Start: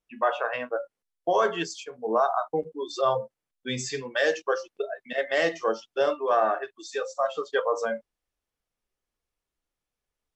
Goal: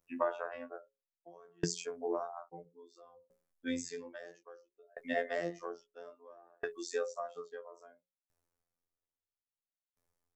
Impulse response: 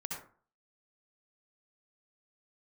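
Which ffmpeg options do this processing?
-filter_complex "[0:a]afftfilt=real='hypot(re,im)*cos(PI*b)':imag='0':win_size=2048:overlap=0.75,acrossover=split=350[a][b];[b]acompressor=threshold=-33dB:ratio=6[c];[a][c]amix=inputs=2:normalize=0,equalizer=f=3.1k:w=1.1:g=-10,bandreject=f=60:t=h:w=6,bandreject=f=120:t=h:w=6,bandreject=f=180:t=h:w=6,bandreject=f=240:t=h:w=6,bandreject=f=300:t=h:w=6,bandreject=f=360:t=h:w=6,bandreject=f=420:t=h:w=6,bandreject=f=480:t=h:w=6,bandreject=f=540:t=h:w=6,aeval=exprs='val(0)*pow(10,-38*if(lt(mod(0.6*n/s,1),2*abs(0.6)/1000),1-mod(0.6*n/s,1)/(2*abs(0.6)/1000),(mod(0.6*n/s,1)-2*abs(0.6)/1000)/(1-2*abs(0.6)/1000))/20)':c=same,volume=9.5dB"

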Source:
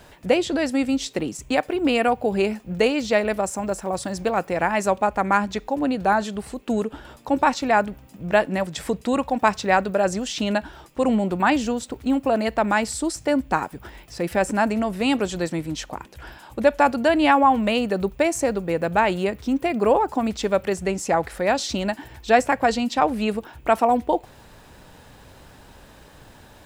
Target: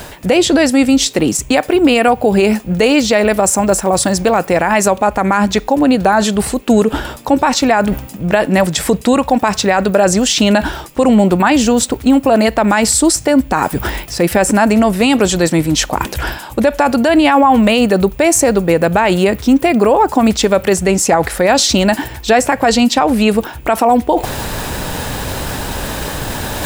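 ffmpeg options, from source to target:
-af "areverse,acompressor=mode=upward:threshold=-22dB:ratio=2.5,areverse,highshelf=f=7.4k:g=7.5,alimiter=level_in=14dB:limit=-1dB:release=50:level=0:latency=1,volume=-1dB"

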